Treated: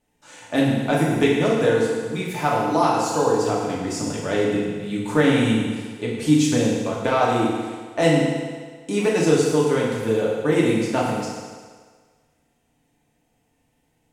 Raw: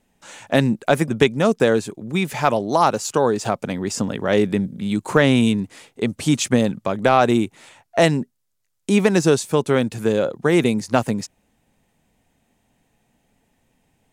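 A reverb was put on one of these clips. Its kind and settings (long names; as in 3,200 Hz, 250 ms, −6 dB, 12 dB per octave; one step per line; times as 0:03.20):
feedback delay network reverb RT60 1.6 s, low-frequency decay 0.8×, high-frequency decay 0.95×, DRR −5.5 dB
level −8.5 dB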